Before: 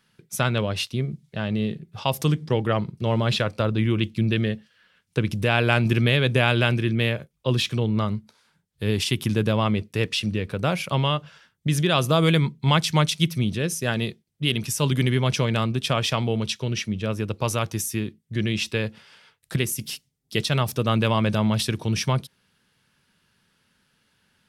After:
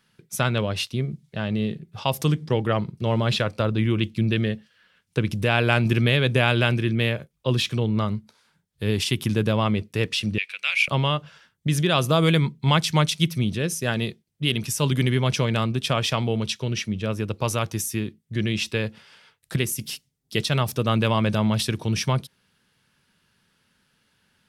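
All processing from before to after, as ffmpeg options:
-filter_complex "[0:a]asettb=1/sr,asplit=3[a][b][c];[a]atrim=end=10.384[d];[b]atrim=start=10.38:end=10.88,asetpts=PTS-STARTPTS,afade=t=in:d=0.004:c=qsin,afade=t=out:st=0.496:d=0.004:c=qsin,highpass=f=2.4k:t=q:w=4.8,equalizer=f=12k:w=2.7:g=-8.5[e];[c]atrim=start=10.876[f];[d][e]acrossfade=d=0.004:c1=hsin:c2=qsin[g];[g][f]acrossfade=d=0.004:c1=qsin:c2=hsin"

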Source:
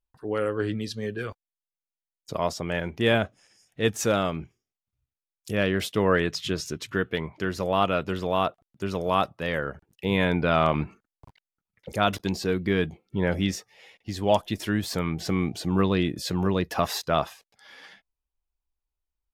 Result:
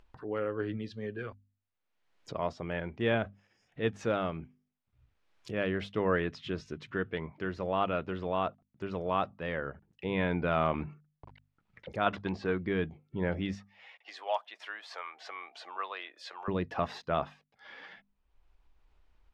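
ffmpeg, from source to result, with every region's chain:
-filter_complex "[0:a]asettb=1/sr,asplit=3[a][b][c];[a]atrim=end=12.064[d];[b]atrim=start=12.06:end=12.66,asetpts=PTS-STARTPTS,afade=t=in:d=0.004:c=qsin,afade=t=out:st=0.596:d=0.004:c=qsin,lowpass=7.4k,equalizer=f=1.2k:w=0.86:g=7[e];[c]atrim=start=12.656[f];[d][e]acrossfade=d=0.004:c1=hsin:c2=qsin[g];[g][f]acrossfade=d=0.004:c1=qsin:c2=hsin,asettb=1/sr,asplit=3[h][i][j];[h]atrim=end=13.554[k];[i]atrim=start=13.55:end=16.48,asetpts=PTS-STARTPTS,afade=t=in:d=0.004:c=qsin,afade=t=out:st=2.926:d=0.004:c=qsin,highpass=f=680:w=0.5412,highpass=f=680:w=1.3066,equalizer=f=1.2k:w=5.7:g=2.5[l];[j]atrim=start=16.476[m];[k][l]acrossfade=d=0.004:c1=hsin:c2=qsin[n];[n][m]acrossfade=d=0.004:c1=qsin:c2=hsin,lowpass=2.7k,bandreject=f=50:t=h:w=6,bandreject=f=100:t=h:w=6,bandreject=f=150:t=h:w=6,bandreject=f=200:t=h:w=6,bandreject=f=250:t=h:w=6,acompressor=mode=upward:threshold=-34dB:ratio=2.5,volume=-6.5dB"

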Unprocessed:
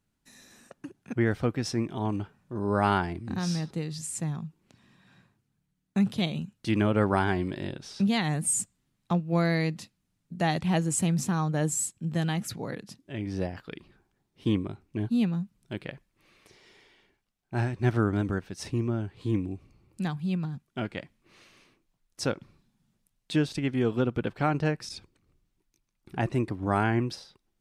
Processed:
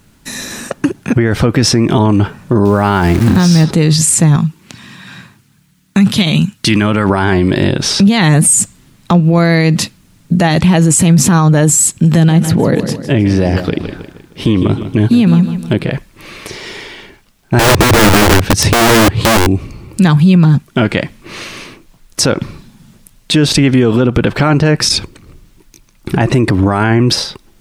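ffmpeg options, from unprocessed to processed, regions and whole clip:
-filter_complex "[0:a]asettb=1/sr,asplit=3[a][b][c];[a]atrim=end=2.654[d];[b]atrim=start=2.65:end=3.64,asetpts=PTS-STARTPTS,afade=t=in:d=0.004:c=qsin,afade=t=out:st=0.986:d=0.004:c=qsin,lowshelf=f=390:g=3,aeval=exprs='val(0)*gte(abs(val(0)),0.00841)':c=same[e];[c]atrim=start=3.636[f];[d][e]acrossfade=d=0.004:c1=hsin:c2=qsin[g];[g][f]acrossfade=d=0.004:c1=qsin:c2=hsin,asettb=1/sr,asplit=3[h][i][j];[h]atrim=end=4.364[k];[i]atrim=start=4.36:end=7.1,asetpts=PTS-STARTPTS,afade=t=in:d=0.004:c=qsin,afade=t=out:st=2.736:d=0.004:c=qsin,highpass=f=180:p=1,equalizer=f=490:w=0.75:g=-9[l];[j]atrim=start=7.096[m];[k][l]acrossfade=d=0.004:c1=hsin:c2=qsin[n];[n][m]acrossfade=d=0.004:c1=qsin:c2=hsin,asettb=1/sr,asplit=3[o][p][q];[o]atrim=end=11.904[r];[p]atrim=start=11.9:end=15.9,asetpts=PTS-STARTPTS,afade=t=in:d=0.004:c=qsin,afade=t=out:st=3.996:d=0.004:c=qsin,acrossover=split=760|2400[s][t][u];[s]acompressor=threshold=-34dB:ratio=4[v];[t]acompressor=threshold=-54dB:ratio=4[w];[u]acompressor=threshold=-56dB:ratio=4[x];[v][w][x]amix=inputs=3:normalize=0,aecho=1:1:156|312|468|624:0.237|0.104|0.0459|0.0202,atrim=end_sample=176400[y];[q]atrim=start=15.896[z];[r][y]acrossfade=d=0.004:c1=hsin:c2=qsin[aa];[aa][z]acrossfade=d=0.004:c1=qsin:c2=hsin,asettb=1/sr,asplit=3[ab][ac][ad];[ab]atrim=end=17.594[ae];[ac]atrim=start=17.59:end=19.47,asetpts=PTS-STARTPTS,afade=t=in:d=0.004:c=qsin,afade=t=out:st=1.876:d=0.004:c=qsin,equalizer=f=110:t=o:w=1.4:g=12,acompressor=threshold=-25dB:ratio=2.5:attack=3.2:release=140:knee=1:detection=peak,aeval=exprs='(mod(21.1*val(0)+1,2)-1)/21.1':c=same[af];[ad]atrim=start=19.466[ag];[ae][af]acrossfade=d=0.004:c1=hsin:c2=qsin[ah];[ah][ag]acrossfade=d=0.004:c1=qsin:c2=hsin,bandreject=f=750:w=14,acompressor=threshold=-26dB:ratio=6,alimiter=level_in=31dB:limit=-1dB:release=50:level=0:latency=1,volume=-1dB"

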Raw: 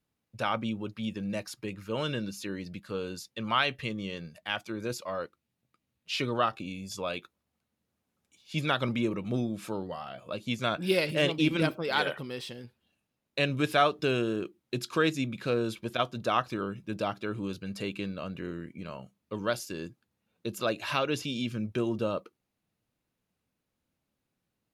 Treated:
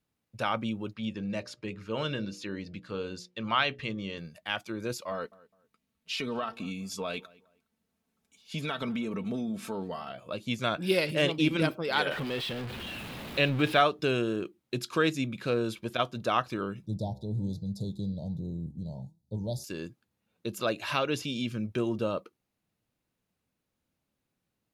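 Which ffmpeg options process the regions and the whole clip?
-filter_complex "[0:a]asettb=1/sr,asplit=3[a][b][c];[a]atrim=end=0.934[d];[b]atrim=start=0.93:end=4.18,asetpts=PTS-STARTPTS,afade=t=in:d=0.004:c=qsin,afade=t=out:st=3.246:d=0.004:c=qsin,lowpass=6k,bandreject=f=60:t=h:w=6,bandreject=f=120:t=h:w=6,bandreject=f=180:t=h:w=6,bandreject=f=240:t=h:w=6,bandreject=f=300:t=h:w=6,bandreject=f=360:t=h:w=6,bandreject=f=420:t=h:w=6,bandreject=f=480:t=h:w=6,bandreject=f=540:t=h:w=6,bandreject=f=600:t=h:w=6[e];[c]atrim=start=4.176[f];[d][e]acrossfade=d=0.004:c1=hsin:c2=qsin[g];[g][f]acrossfade=d=0.004:c1=qsin:c2=hsin,asettb=1/sr,asplit=3[h][i][j];[h]atrim=end=5.114[k];[i]atrim=start=5.11:end=10.12,asetpts=PTS-STARTPTS,afade=t=in:d=0.004:c=qsin,afade=t=out:st=5.006:d=0.004:c=qsin,aecho=1:1:4.5:0.58,atrim=end_sample=220941,acompressor=threshold=-29dB:ratio=5:attack=3.2:release=140:knee=1:detection=peak,asplit=2[l][m];[m]adelay=207,lowpass=f=2.1k:p=1,volume=-22dB,asplit=2[n][o];[o]adelay=207,lowpass=f=2.1k:p=1,volume=0.28[p];[l][n][p]amix=inputs=3:normalize=0,atrim=end_sample=220941[q];[j]atrim=start=10.116[r];[k][q]acrossfade=d=0.004:c1=hsin:c2=qsin[s];[s][r]acrossfade=d=0.004:c1=qsin:c2=hsin,asettb=1/sr,asplit=3[t][u][v];[t]atrim=end=12.114[w];[u]atrim=start=12.11:end=13.81,asetpts=PTS-STARTPTS,afade=t=in:d=0.004:c=qsin,afade=t=out:st=1.696:d=0.004:c=qsin,aeval=exprs='val(0)+0.5*0.0224*sgn(val(0))':c=same,highshelf=f=4.6k:t=q:w=1.5:g=-8.5[x];[v]atrim=start=13.806[y];[w][x]acrossfade=d=0.004:c1=hsin:c2=qsin[z];[z][y]acrossfade=d=0.004:c1=qsin:c2=hsin,asettb=1/sr,asplit=3[aa][ab][ac];[aa]atrim=end=16.864[ad];[ab]atrim=start=16.86:end=19.64,asetpts=PTS-STARTPTS,afade=t=in:d=0.004:c=qsin,afade=t=out:st=2.776:d=0.004:c=qsin,lowshelf=f=210:t=q:w=1.5:g=11.5,flanger=delay=6:depth=8.5:regen=87:speed=1.3:shape=sinusoidal,asuperstop=centerf=1800:order=20:qfactor=0.68[ae];[ac]atrim=start=19.636[af];[ad][ae]acrossfade=d=0.004:c1=hsin:c2=qsin[ag];[ag][af]acrossfade=d=0.004:c1=qsin:c2=hsin"

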